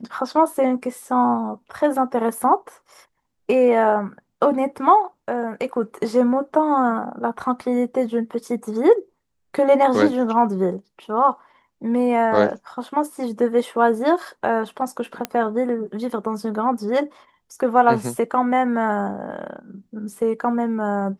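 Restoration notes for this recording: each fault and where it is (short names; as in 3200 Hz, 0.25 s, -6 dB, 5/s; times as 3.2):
15.25 pop -9 dBFS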